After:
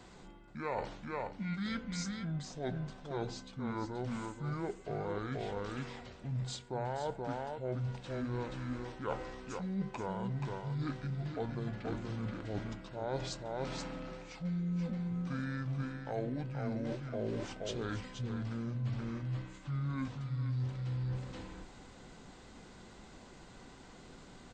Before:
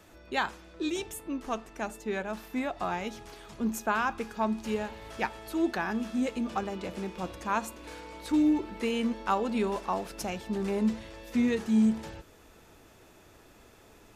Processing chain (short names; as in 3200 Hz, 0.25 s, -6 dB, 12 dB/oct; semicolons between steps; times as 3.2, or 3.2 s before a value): echo 0.276 s -6 dB; reverse; compressor 5:1, threshold -37 dBFS, peak gain reduction 15.5 dB; reverse; speed mistake 78 rpm record played at 45 rpm; gain +1.5 dB